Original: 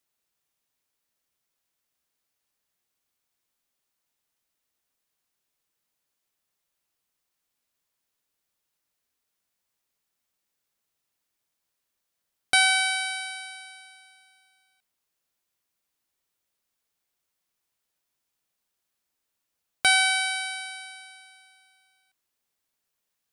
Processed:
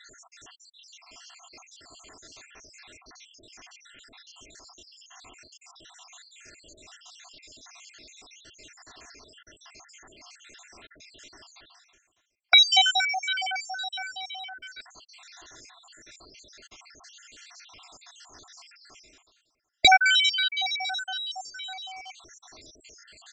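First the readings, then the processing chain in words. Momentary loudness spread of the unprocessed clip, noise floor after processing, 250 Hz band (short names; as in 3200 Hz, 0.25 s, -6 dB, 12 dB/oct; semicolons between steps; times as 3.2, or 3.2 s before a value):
21 LU, -70 dBFS, n/a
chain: random spectral dropouts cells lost 73%; comb 2.9 ms, depth 56%; reverse; upward compressor, threshold -31 dBFS; reverse; downsampling 16000 Hz; gain +9 dB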